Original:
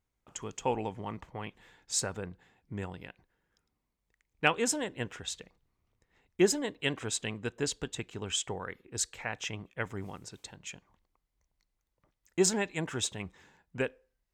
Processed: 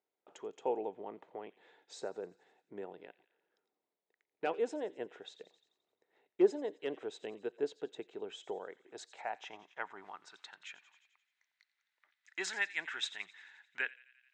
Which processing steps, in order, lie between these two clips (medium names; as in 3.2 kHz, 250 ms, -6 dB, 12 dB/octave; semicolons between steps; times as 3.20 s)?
cabinet simulation 240–9100 Hz, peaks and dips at 240 Hz -4 dB, 520 Hz -8 dB, 1.1 kHz -6 dB, 3.8 kHz +7 dB; hard clipper -18.5 dBFS, distortion -18 dB; on a send: feedback echo behind a high-pass 87 ms, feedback 53%, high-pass 2.2 kHz, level -16.5 dB; on the sum: band-pass sweep 490 Hz -> 1.8 kHz, 8.45–11.17 s; tape noise reduction on one side only encoder only; trim +5 dB